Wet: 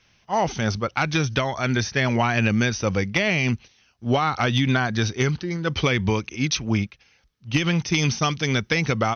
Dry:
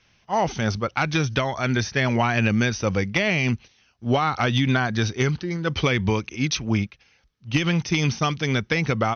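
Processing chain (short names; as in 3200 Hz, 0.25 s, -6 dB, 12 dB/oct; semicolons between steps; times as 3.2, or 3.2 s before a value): high shelf 5800 Hz +3.5 dB, from 7.94 s +10 dB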